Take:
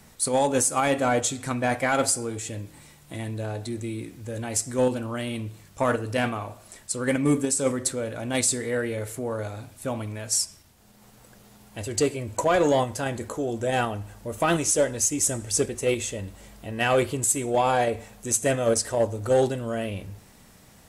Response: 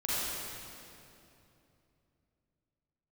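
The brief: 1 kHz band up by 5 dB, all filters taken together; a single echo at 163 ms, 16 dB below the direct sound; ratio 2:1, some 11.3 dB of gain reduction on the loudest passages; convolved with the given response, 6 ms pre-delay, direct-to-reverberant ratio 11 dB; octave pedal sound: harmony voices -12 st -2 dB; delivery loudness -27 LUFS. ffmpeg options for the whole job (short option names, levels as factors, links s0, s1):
-filter_complex "[0:a]equalizer=f=1000:t=o:g=7,acompressor=threshold=0.0158:ratio=2,aecho=1:1:163:0.158,asplit=2[s0][s1];[1:a]atrim=start_sample=2205,adelay=6[s2];[s1][s2]afir=irnorm=-1:irlink=0,volume=0.112[s3];[s0][s3]amix=inputs=2:normalize=0,asplit=2[s4][s5];[s5]asetrate=22050,aresample=44100,atempo=2,volume=0.794[s6];[s4][s6]amix=inputs=2:normalize=0,volume=1.58"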